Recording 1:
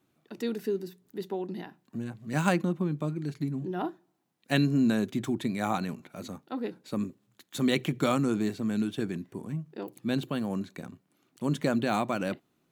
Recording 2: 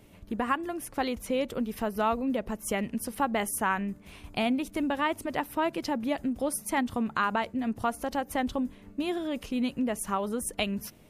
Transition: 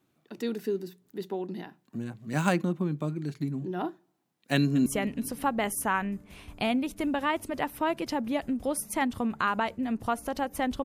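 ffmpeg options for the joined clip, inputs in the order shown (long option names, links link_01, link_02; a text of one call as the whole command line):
ffmpeg -i cue0.wav -i cue1.wav -filter_complex "[0:a]apad=whole_dur=10.84,atrim=end=10.84,atrim=end=4.862[link_01];[1:a]atrim=start=2.618:end=8.6[link_02];[link_01][link_02]acrossfade=duration=0.004:curve1=hsin:curve2=hsin,asplit=2[link_03][link_04];[link_04]afade=type=in:start_time=4.54:duration=0.01,afade=type=out:start_time=4.86:duration=0.01,aecho=0:1:210|420|630|840|1050|1260:0.149624|0.0897741|0.0538645|0.0323187|0.0193912|0.0116347[link_05];[link_03][link_05]amix=inputs=2:normalize=0" out.wav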